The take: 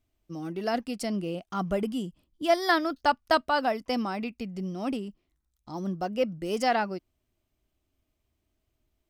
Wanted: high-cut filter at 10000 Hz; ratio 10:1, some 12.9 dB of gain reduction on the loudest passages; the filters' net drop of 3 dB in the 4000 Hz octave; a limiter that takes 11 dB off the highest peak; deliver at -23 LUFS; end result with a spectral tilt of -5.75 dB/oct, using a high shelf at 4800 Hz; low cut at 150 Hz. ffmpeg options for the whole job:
-af "highpass=150,lowpass=10k,equalizer=f=4k:t=o:g=-8,highshelf=f=4.8k:g=7,acompressor=threshold=-31dB:ratio=10,volume=16.5dB,alimiter=limit=-13.5dB:level=0:latency=1"

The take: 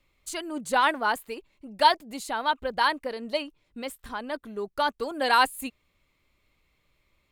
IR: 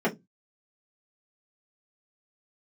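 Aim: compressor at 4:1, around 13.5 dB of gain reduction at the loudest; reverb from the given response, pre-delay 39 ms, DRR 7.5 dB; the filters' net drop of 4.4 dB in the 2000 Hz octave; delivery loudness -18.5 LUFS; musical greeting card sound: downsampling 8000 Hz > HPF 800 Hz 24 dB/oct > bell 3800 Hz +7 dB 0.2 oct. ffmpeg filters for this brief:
-filter_complex "[0:a]equalizer=f=2k:t=o:g=-6.5,acompressor=threshold=-31dB:ratio=4,asplit=2[a][b];[1:a]atrim=start_sample=2205,adelay=39[c];[b][c]afir=irnorm=-1:irlink=0,volume=-20.5dB[d];[a][d]amix=inputs=2:normalize=0,aresample=8000,aresample=44100,highpass=f=800:w=0.5412,highpass=f=800:w=1.3066,equalizer=f=3.8k:t=o:w=0.2:g=7,volume=21dB"

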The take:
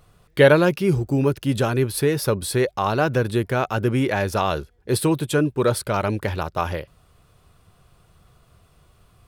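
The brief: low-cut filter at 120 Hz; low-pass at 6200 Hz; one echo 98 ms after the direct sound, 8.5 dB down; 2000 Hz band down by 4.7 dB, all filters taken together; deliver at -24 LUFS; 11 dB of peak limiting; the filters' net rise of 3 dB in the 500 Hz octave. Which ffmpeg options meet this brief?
-af "highpass=120,lowpass=6.2k,equalizer=f=500:t=o:g=4,equalizer=f=2k:t=o:g=-7,alimiter=limit=-11dB:level=0:latency=1,aecho=1:1:98:0.376,volume=-1.5dB"

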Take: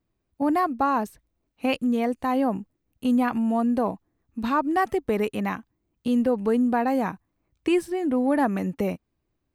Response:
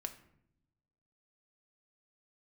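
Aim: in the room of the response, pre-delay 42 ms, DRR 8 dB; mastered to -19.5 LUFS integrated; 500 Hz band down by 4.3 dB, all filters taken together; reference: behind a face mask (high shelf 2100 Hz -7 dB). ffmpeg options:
-filter_complex "[0:a]equalizer=f=500:t=o:g=-5,asplit=2[a][b];[1:a]atrim=start_sample=2205,adelay=42[c];[b][c]afir=irnorm=-1:irlink=0,volume=-6dB[d];[a][d]amix=inputs=2:normalize=0,highshelf=f=2.1k:g=-7,volume=7dB"

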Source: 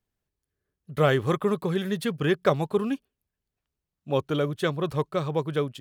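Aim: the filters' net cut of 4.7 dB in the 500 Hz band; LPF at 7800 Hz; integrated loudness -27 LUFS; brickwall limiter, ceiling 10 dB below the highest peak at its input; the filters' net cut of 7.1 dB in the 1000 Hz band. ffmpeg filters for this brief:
-af "lowpass=7.8k,equalizer=f=500:t=o:g=-4,equalizer=f=1k:t=o:g=-8.5,volume=6dB,alimiter=limit=-17dB:level=0:latency=1"

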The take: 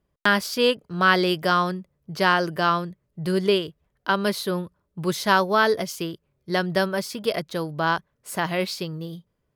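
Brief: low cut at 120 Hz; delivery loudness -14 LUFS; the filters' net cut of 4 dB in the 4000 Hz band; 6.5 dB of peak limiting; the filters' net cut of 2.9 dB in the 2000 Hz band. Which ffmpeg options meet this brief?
-af "highpass=120,equalizer=f=2k:t=o:g=-3.5,equalizer=f=4k:t=o:g=-4,volume=12.5dB,alimiter=limit=-0.5dB:level=0:latency=1"

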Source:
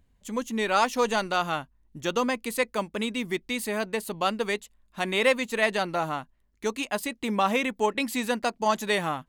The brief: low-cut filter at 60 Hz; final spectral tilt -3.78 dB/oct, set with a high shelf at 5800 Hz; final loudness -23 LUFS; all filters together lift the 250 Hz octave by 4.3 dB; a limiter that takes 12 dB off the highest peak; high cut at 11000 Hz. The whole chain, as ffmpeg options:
-af "highpass=60,lowpass=11k,equalizer=f=250:t=o:g=5,highshelf=f=5.8k:g=8.5,volume=8dB,alimiter=limit=-13dB:level=0:latency=1"

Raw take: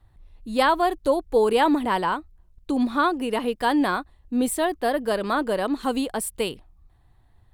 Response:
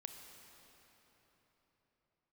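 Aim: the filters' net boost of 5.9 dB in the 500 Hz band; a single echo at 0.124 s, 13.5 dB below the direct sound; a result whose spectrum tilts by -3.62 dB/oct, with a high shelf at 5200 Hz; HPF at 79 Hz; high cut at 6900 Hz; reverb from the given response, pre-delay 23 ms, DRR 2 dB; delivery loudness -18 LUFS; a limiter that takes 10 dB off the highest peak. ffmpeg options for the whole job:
-filter_complex "[0:a]highpass=79,lowpass=6.9k,equalizer=f=500:t=o:g=7,highshelf=f=5.2k:g=-6.5,alimiter=limit=-13.5dB:level=0:latency=1,aecho=1:1:124:0.211,asplit=2[a][b];[1:a]atrim=start_sample=2205,adelay=23[c];[b][c]afir=irnorm=-1:irlink=0,volume=2dB[d];[a][d]amix=inputs=2:normalize=0,volume=3dB"

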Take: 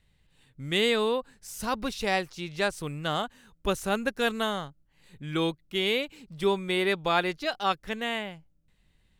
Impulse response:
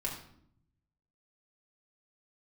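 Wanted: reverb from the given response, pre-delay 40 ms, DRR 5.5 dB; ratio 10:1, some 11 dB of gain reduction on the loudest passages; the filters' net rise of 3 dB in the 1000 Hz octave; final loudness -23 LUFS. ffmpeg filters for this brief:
-filter_complex "[0:a]equalizer=f=1k:t=o:g=4,acompressor=threshold=-30dB:ratio=10,asplit=2[a][b];[1:a]atrim=start_sample=2205,adelay=40[c];[b][c]afir=irnorm=-1:irlink=0,volume=-8dB[d];[a][d]amix=inputs=2:normalize=0,volume=12dB"

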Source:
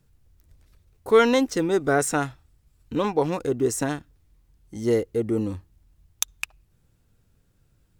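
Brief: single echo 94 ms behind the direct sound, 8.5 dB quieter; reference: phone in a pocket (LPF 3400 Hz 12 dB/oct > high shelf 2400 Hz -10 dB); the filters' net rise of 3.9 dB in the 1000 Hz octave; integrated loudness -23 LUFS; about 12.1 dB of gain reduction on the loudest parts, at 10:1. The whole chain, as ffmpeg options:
-af "equalizer=f=1k:t=o:g=7.5,acompressor=threshold=-21dB:ratio=10,lowpass=3.4k,highshelf=f=2.4k:g=-10,aecho=1:1:94:0.376,volume=5.5dB"

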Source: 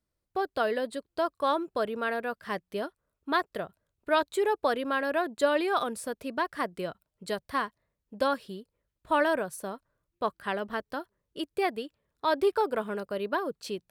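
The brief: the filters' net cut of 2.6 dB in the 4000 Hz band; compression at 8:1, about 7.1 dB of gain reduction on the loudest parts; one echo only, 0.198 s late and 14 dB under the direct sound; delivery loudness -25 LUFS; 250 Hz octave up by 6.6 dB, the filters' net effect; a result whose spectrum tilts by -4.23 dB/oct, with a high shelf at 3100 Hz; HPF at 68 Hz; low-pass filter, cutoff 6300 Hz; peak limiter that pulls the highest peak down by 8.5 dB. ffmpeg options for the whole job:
-af "highpass=68,lowpass=6.3k,equalizer=f=250:t=o:g=8.5,highshelf=f=3.1k:g=8.5,equalizer=f=4k:t=o:g=-9,acompressor=threshold=-25dB:ratio=8,alimiter=level_in=0.5dB:limit=-24dB:level=0:latency=1,volume=-0.5dB,aecho=1:1:198:0.2,volume=10dB"

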